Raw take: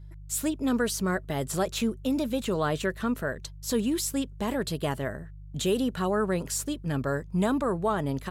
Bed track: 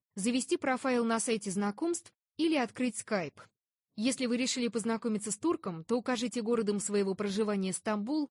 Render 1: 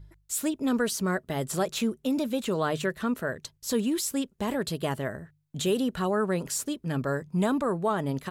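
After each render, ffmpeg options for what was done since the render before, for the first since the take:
-af "bandreject=f=50:t=h:w=4,bandreject=f=100:t=h:w=4,bandreject=f=150:t=h:w=4"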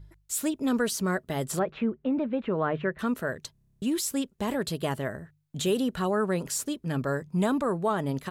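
-filter_complex "[0:a]asettb=1/sr,asplit=3[a][b][c];[a]atrim=end=1.594[d];[b]atrim=start=1.59:end=2.99,asetpts=PTS-STARTPTS,afade=t=in:d=0.004:c=qsin,afade=t=out:st=1.396:d=0.004:c=qsin,lowpass=f=2.3k:w=0.5412,lowpass=f=2.3k:w=1.3066[e];[c]atrim=start=2.986[f];[d][e]acrossfade=d=0.004:c1=hsin:c2=qsin[g];[g][f]acrossfade=d=0.004:c1=qsin:c2=hsin,asplit=11[h][i][j][k][l][m][n][o][p][q][r];[h]atrim=end=3.552[s];[i]atrim=start=3.518:end=3.552[t];[j]atrim=start=3.518:end=3.552[u];[k]atrim=start=3.518:end=3.552[v];[l]atrim=start=3.518:end=3.552[w];[m]atrim=start=3.518:end=3.552[x];[n]atrim=start=3.518:end=3.552[y];[o]atrim=start=3.518:end=3.552[z];[p]atrim=start=3.518:end=3.552[aa];[q]atrim=start=3.518:end=3.552[ab];[r]atrim=start=3.818[ac];[s][t]acrossfade=d=0.004:c1=hsin:c2=hsin[ad];[ad][u]acrossfade=d=0.004:c1=hsin:c2=hsin[ae];[ae][v]acrossfade=d=0.004:c1=hsin:c2=hsin[af];[af][w]acrossfade=d=0.004:c1=hsin:c2=hsin[ag];[ag][x]acrossfade=d=0.004:c1=hsin:c2=hsin[ah];[ah][y]acrossfade=d=0.004:c1=hsin:c2=hsin[ai];[ai][z]acrossfade=d=0.004:c1=hsin:c2=hsin[aj];[aj][aa]acrossfade=d=0.004:c1=hsin:c2=hsin[ak];[ak][ab]acrossfade=d=0.004:c1=hsin:c2=hsin[al];[al][ac]acrossfade=d=0.004:c1=hsin:c2=hsin"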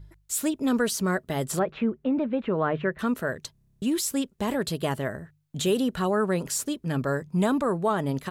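-af "volume=2dB"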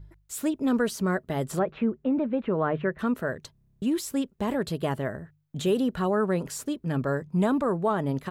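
-af "equalizer=f=9.1k:t=o:w=3:g=-8"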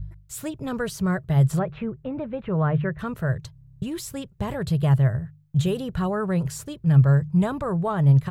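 -af "lowshelf=f=180:t=q:w=3:g=11"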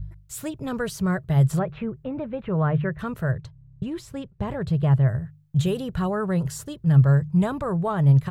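-filter_complex "[0:a]asettb=1/sr,asplit=3[a][b][c];[a]atrim=end=3.314[d];[b]atrim=start=3.31:end=5.08,asetpts=PTS-STARTPTS,afade=t=in:d=0.004:c=qsin,afade=t=out:st=1.766:d=0.004:c=qsin,aemphasis=mode=reproduction:type=75kf[e];[c]atrim=start=5.076[f];[d][e]acrossfade=d=0.004:c1=hsin:c2=qsin[g];[g][f]acrossfade=d=0.004:c1=qsin:c2=hsin,asettb=1/sr,asplit=3[h][i][j];[h]atrim=end=6.284[k];[i]atrim=start=6.28:end=7.14,asetpts=PTS-STARTPTS,afade=t=in:d=0.004:c=qsin,afade=t=out:st=0.856:d=0.004:c=qsin,bandreject=f=2.4k:w=8.8[l];[j]atrim=start=7.136[m];[k][l]acrossfade=d=0.004:c1=hsin:c2=qsin[n];[n][m]acrossfade=d=0.004:c1=qsin:c2=hsin"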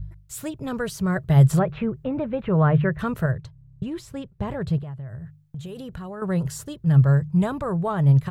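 -filter_complex "[0:a]asettb=1/sr,asplit=3[a][b][c];[a]atrim=end=4.784[d];[b]atrim=start=4.78:end=6.22,asetpts=PTS-STARTPTS,afade=t=in:d=0.004:c=qsin,afade=t=out:st=1.436:d=0.004:c=qsin,acompressor=threshold=-31dB:ratio=20:attack=3.2:release=140:knee=1:detection=peak[e];[c]atrim=start=6.216[f];[d][e]acrossfade=d=0.004:c1=hsin:c2=qsin[g];[g][f]acrossfade=d=0.004:c1=qsin:c2=hsin,asplit=3[h][i][j];[h]atrim=end=1.162[k];[i]atrim=start=1.158:end=3.262,asetpts=PTS-STARTPTS,volume=4dB[l];[j]atrim=start=3.258[m];[k][l]acrossfade=d=0.004:c1=hsin:c2=hsin[n];[n][m]acrossfade=d=0.004:c1=hsin:c2=hsin"

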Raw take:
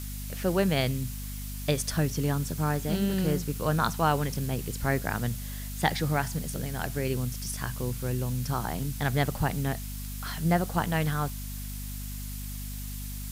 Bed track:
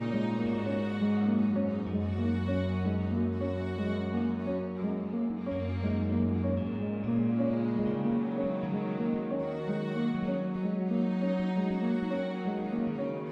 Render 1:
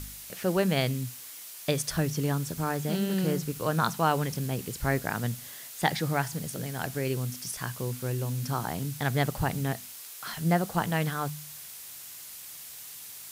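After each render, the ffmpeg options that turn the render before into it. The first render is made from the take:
-af "bandreject=f=50:t=h:w=4,bandreject=f=100:t=h:w=4,bandreject=f=150:t=h:w=4,bandreject=f=200:t=h:w=4,bandreject=f=250:t=h:w=4"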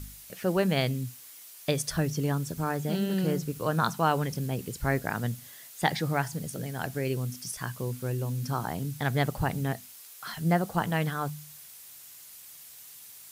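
-af "afftdn=nr=6:nf=-44"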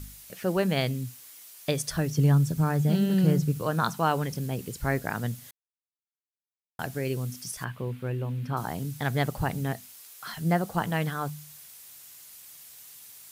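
-filter_complex "[0:a]asettb=1/sr,asplit=3[a][b][c];[a]atrim=end=2.184[d];[b]atrim=start=2.18:end=3.62,asetpts=PTS-STARTPTS,afade=t=in:d=0.004:c=qsin,afade=t=out:st=1.436:d=0.004:c=qsin,equalizer=f=140:w=1.5:g=10[e];[c]atrim=start=3.616[f];[d][e]acrossfade=d=0.004:c1=hsin:c2=qsin[g];[g][f]acrossfade=d=0.004:c1=qsin:c2=hsin,asettb=1/sr,asplit=3[h][i][j];[h]atrim=end=7.644[k];[i]atrim=start=7.64:end=8.57,asetpts=PTS-STARTPTS,afade=t=in:d=0.004:c=qsin,afade=t=out:st=0.926:d=0.004:c=qsin,highshelf=f=4.1k:t=q:w=1.5:g=-13.5[l];[j]atrim=start=8.566[m];[k][l]acrossfade=d=0.004:c1=hsin:c2=qsin[n];[n][m]acrossfade=d=0.004:c1=qsin:c2=hsin,asplit=3[o][p][q];[o]atrim=end=5.51,asetpts=PTS-STARTPTS,afade=t=out:st=5.506:d=0.004:c=hsin[r];[p]atrim=start=5.51:end=6.79,asetpts=PTS-STARTPTS,volume=0[s];[q]atrim=start=6.79,asetpts=PTS-STARTPTS,afade=t=in:d=0.004:c=hsin[t];[r][s][t]concat=n=3:v=0:a=1"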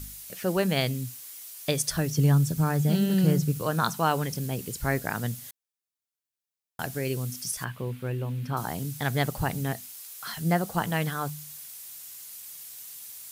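-af "highshelf=f=3.7k:g=6"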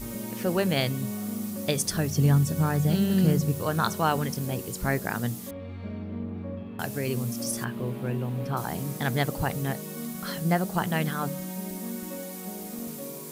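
-filter_complex "[1:a]volume=-6dB[a];[0:a][a]amix=inputs=2:normalize=0"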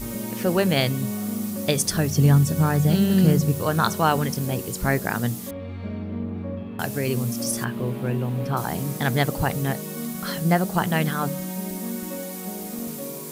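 -af "volume=4.5dB"

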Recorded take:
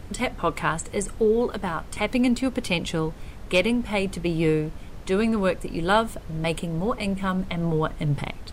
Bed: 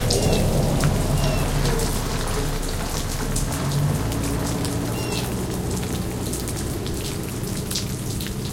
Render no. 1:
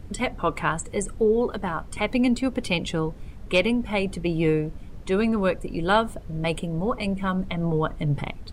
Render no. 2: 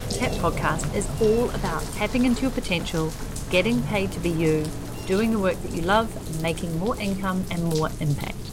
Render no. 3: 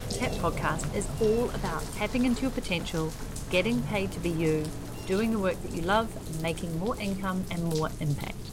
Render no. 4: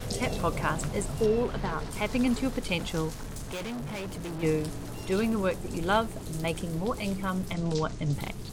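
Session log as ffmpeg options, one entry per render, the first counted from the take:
-af "afftdn=nr=8:nf=-40"
-filter_complex "[1:a]volume=-9dB[a];[0:a][a]amix=inputs=2:normalize=0"
-af "volume=-5dB"
-filter_complex "[0:a]asettb=1/sr,asplit=3[a][b][c];[a]atrim=end=1.264[d];[b]atrim=start=1.26:end=1.91,asetpts=PTS-STARTPTS,afade=t=in:d=0.004:c=qsin,afade=t=out:st=0.646:d=0.004:c=qsin,acrossover=split=4700[e][f];[f]acompressor=threshold=-59dB:ratio=4:attack=1:release=60[g];[e][g]amix=inputs=2:normalize=0[h];[c]atrim=start=1.906[i];[d][h]acrossfade=d=0.004:c1=hsin:c2=qsin[j];[j][i]acrossfade=d=0.004:c1=qsin:c2=hsin,asettb=1/sr,asplit=3[k][l][m];[k]atrim=end=3.144[n];[l]atrim=start=3.14:end=4.43,asetpts=PTS-STARTPTS,afade=t=in:d=0.004:c=qsin,afade=t=out:st=1.286:d=0.004:c=qsin,volume=33.5dB,asoftclip=hard,volume=-33.5dB[o];[m]atrim=start=4.426[p];[n][o]acrossfade=d=0.004:c1=hsin:c2=qsin[q];[q][p]acrossfade=d=0.004:c1=qsin:c2=hsin,asettb=1/sr,asplit=3[r][s][t];[r]atrim=end=7.534[u];[s]atrim=start=7.53:end=8.13,asetpts=PTS-STARTPTS,afade=t=in:d=0.004:c=qsin,afade=t=out:st=0.596:d=0.004:c=qsin,lowpass=f=7.4k:w=0.5412,lowpass=f=7.4k:w=1.3066[v];[t]atrim=start=8.126[w];[u][v]acrossfade=d=0.004:c1=hsin:c2=qsin[x];[x][w]acrossfade=d=0.004:c1=qsin:c2=hsin"

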